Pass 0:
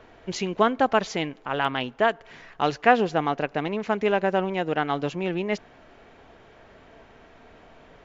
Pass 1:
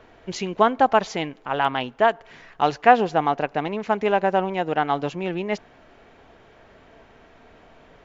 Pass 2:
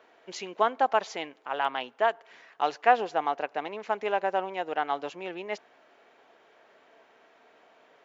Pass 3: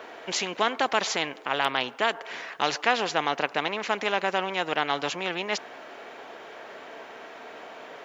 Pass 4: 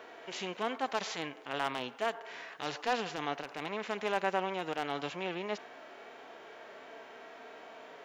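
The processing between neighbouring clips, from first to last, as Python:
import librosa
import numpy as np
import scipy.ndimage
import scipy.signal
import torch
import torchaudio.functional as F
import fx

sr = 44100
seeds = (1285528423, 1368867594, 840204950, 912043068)

y1 = fx.dynamic_eq(x, sr, hz=830.0, q=1.7, threshold_db=-34.0, ratio=4.0, max_db=6)
y2 = scipy.signal.sosfilt(scipy.signal.butter(2, 410.0, 'highpass', fs=sr, output='sos'), y1)
y2 = y2 * 10.0 ** (-6.0 / 20.0)
y3 = fx.spectral_comp(y2, sr, ratio=2.0)
y4 = 10.0 ** (-13.0 / 20.0) * (np.abs((y3 / 10.0 ** (-13.0 / 20.0) + 3.0) % 4.0 - 2.0) - 1.0)
y4 = fx.hpss(y4, sr, part='percussive', gain_db=-15)
y4 = y4 * 10.0 ** (-3.5 / 20.0)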